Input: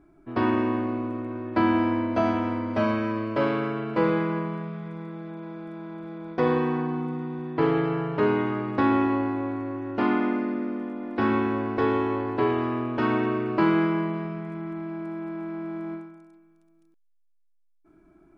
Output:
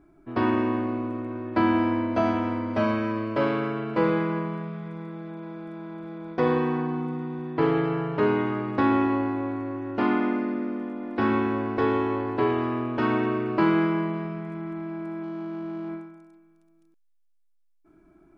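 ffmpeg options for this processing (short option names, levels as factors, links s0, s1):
-filter_complex "[0:a]asettb=1/sr,asplit=3[s0][s1][s2];[s0]atrim=end=15.234[s3];[s1]atrim=start=15.23:end=15.89,asetpts=PTS-STARTPTS,afade=t=in:d=0.004:c=qsin,afade=t=out:st=0.656:d=0.004:c=qsin,adynamicsmooth=sensitivity=7.5:basefreq=880[s4];[s2]atrim=start=15.886[s5];[s3][s4]acrossfade=d=0.004:c1=hsin:c2=qsin[s6];[s6][s5]acrossfade=d=0.004:c1=qsin:c2=hsin"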